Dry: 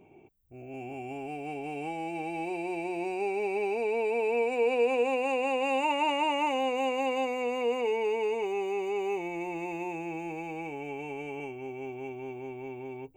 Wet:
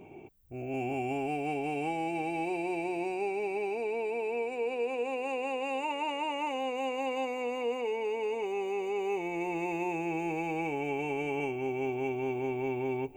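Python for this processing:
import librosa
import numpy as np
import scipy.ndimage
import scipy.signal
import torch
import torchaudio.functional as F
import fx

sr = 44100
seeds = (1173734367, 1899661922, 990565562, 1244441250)

p1 = fx.rider(x, sr, range_db=10, speed_s=0.5)
p2 = p1 + fx.echo_feedback(p1, sr, ms=1154, feedback_pct=50, wet_db=-24, dry=0)
y = p2 * 10.0 ** (-2.0 / 20.0)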